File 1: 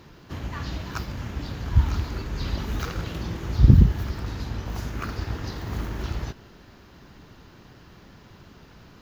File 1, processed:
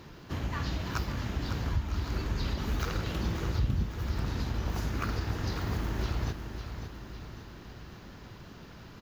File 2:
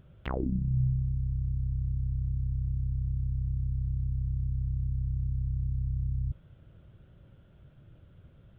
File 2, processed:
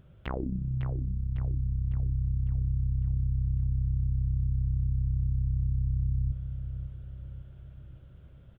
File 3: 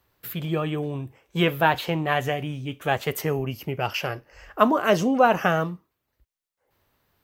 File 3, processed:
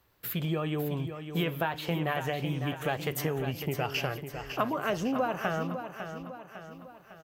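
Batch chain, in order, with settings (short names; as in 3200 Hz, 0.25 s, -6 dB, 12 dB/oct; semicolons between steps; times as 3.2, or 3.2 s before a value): compressor 6:1, threshold -27 dBFS; feedback echo 0.553 s, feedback 50%, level -9 dB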